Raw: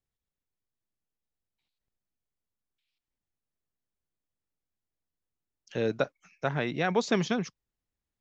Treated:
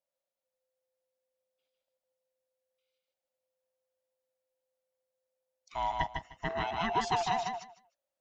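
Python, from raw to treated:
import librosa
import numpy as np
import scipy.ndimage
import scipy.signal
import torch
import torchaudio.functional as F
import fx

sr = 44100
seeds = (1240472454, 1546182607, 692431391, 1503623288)

y = fx.band_swap(x, sr, width_hz=500)
y = fx.low_shelf(y, sr, hz=110.0, db=-6.5)
y = fx.echo_feedback(y, sr, ms=153, feedback_pct=17, wet_db=-4)
y = y * librosa.db_to_amplitude(-4.0)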